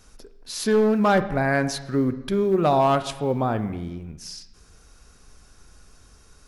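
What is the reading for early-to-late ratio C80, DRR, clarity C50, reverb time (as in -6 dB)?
15.0 dB, 10.0 dB, 13.0 dB, 1.0 s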